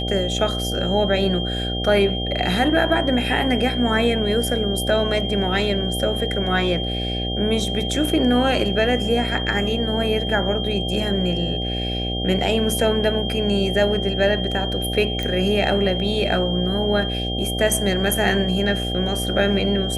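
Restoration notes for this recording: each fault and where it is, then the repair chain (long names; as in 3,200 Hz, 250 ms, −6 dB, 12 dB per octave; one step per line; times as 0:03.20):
mains buzz 60 Hz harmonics 13 −26 dBFS
whistle 3,200 Hz −27 dBFS
0:15.23: click −13 dBFS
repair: click removal
notch filter 3,200 Hz, Q 30
hum removal 60 Hz, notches 13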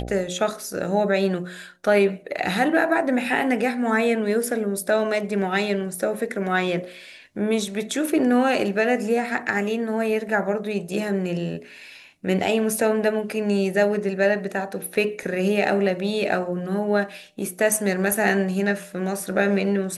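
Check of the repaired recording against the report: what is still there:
none of them is left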